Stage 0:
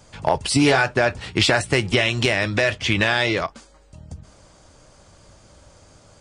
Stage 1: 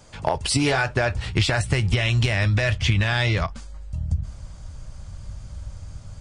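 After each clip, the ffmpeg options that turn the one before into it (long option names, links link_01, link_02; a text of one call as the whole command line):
ffmpeg -i in.wav -af "asubboost=boost=12:cutoff=110,acompressor=threshold=-17dB:ratio=6" out.wav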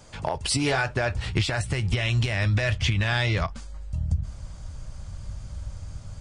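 ffmpeg -i in.wav -af "alimiter=limit=-14dB:level=0:latency=1:release=377" out.wav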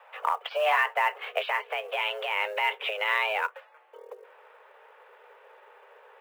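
ffmpeg -i in.wav -af "highpass=frequency=220:width_type=q:width=0.5412,highpass=frequency=220:width_type=q:width=1.307,lowpass=frequency=2600:width_type=q:width=0.5176,lowpass=frequency=2600:width_type=q:width=0.7071,lowpass=frequency=2600:width_type=q:width=1.932,afreqshift=310,acrusher=bits=7:mode=log:mix=0:aa=0.000001,volume=1.5dB" out.wav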